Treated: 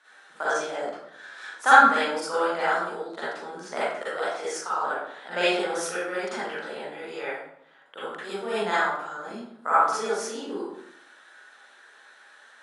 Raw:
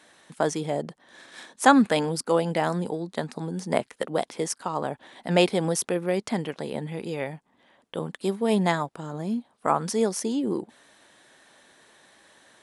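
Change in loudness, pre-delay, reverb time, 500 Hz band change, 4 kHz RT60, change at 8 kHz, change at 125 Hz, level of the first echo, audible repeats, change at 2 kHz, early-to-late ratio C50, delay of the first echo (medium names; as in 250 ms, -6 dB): +1.0 dB, 38 ms, 0.70 s, -2.5 dB, 0.50 s, -4.0 dB, -19.0 dB, no echo, no echo, +7.5 dB, -5.0 dB, no echo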